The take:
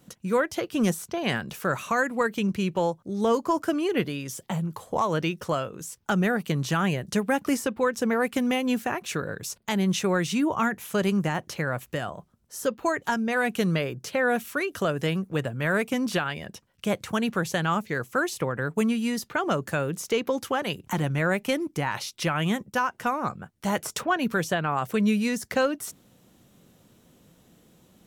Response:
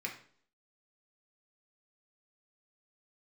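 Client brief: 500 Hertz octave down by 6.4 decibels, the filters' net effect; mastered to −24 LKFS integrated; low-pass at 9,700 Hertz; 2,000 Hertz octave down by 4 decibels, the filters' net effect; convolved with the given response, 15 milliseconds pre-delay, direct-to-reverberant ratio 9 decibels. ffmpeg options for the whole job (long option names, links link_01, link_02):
-filter_complex "[0:a]lowpass=9700,equalizer=frequency=500:width_type=o:gain=-7.5,equalizer=frequency=2000:width_type=o:gain=-5,asplit=2[link_01][link_02];[1:a]atrim=start_sample=2205,adelay=15[link_03];[link_02][link_03]afir=irnorm=-1:irlink=0,volume=-11dB[link_04];[link_01][link_04]amix=inputs=2:normalize=0,volume=5dB"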